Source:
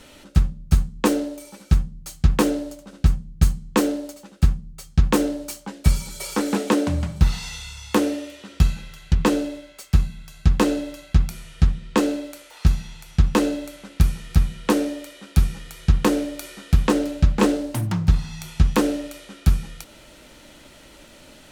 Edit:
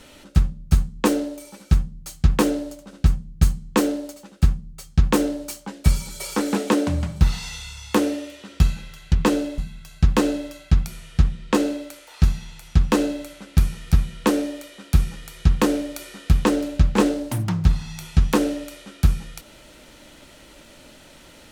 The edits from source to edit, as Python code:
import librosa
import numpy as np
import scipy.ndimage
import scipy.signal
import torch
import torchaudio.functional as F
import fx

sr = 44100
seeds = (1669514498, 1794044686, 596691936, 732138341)

y = fx.edit(x, sr, fx.cut(start_s=9.58, length_s=0.43), tone=tone)